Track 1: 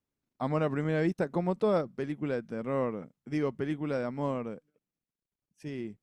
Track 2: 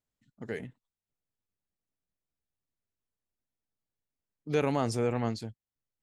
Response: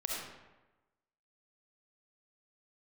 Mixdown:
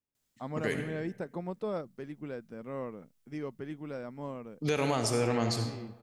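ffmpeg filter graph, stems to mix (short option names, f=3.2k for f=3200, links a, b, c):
-filter_complex "[0:a]volume=-8dB[a];[1:a]highshelf=f=2.5k:g=10,adelay=150,volume=0dB,asplit=2[b][c];[c]volume=-4.5dB[d];[2:a]atrim=start_sample=2205[e];[d][e]afir=irnorm=-1:irlink=0[f];[a][b][f]amix=inputs=3:normalize=0,alimiter=limit=-18.5dB:level=0:latency=1:release=247"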